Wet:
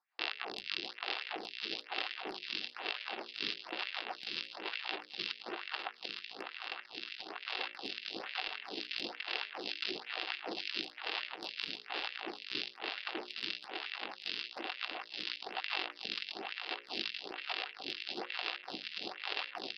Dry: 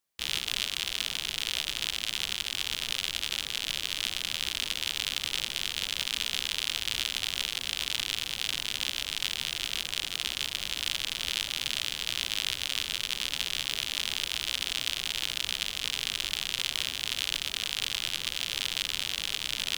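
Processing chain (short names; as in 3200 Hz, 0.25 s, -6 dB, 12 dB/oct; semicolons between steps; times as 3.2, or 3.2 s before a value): multi-head echo 0.314 s, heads second and third, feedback 45%, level -9.5 dB; downsampling 11025 Hz; 5.34–7.39 bell 1300 Hz +5 dB 1 oct; LFO high-pass sine 3.4 Hz 350–2200 Hz; bell 3100 Hz -8.5 dB 0.84 oct; negative-ratio compressor -40 dBFS, ratio -0.5; notches 60/120/180/240/300/360/420/480/540/600 Hz; small resonant body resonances 210/320/750/2700 Hz, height 9 dB, ringing for 30 ms; photocell phaser 1.1 Hz; gain +1 dB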